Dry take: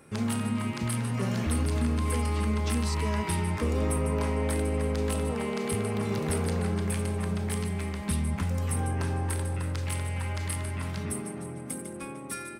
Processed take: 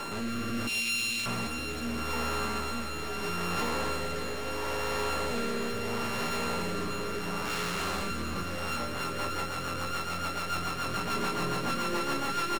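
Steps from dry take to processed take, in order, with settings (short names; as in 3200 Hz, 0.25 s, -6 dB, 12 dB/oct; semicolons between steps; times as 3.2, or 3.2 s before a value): sample sorter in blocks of 32 samples; negative-ratio compressor -34 dBFS, ratio -1; 0.67–1.26 steep high-pass 2400 Hz 72 dB/oct; soft clip -34 dBFS, distortion -11 dB; 7.45–8.03 requantised 8-bit, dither none; overdrive pedal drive 32 dB, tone 6800 Hz, clips at -23 dBFS; rotary speaker horn 0.75 Hz, later 7 Hz, at 8.47; doubler 17 ms -7.5 dB; on a send: echo 0.589 s -11.5 dB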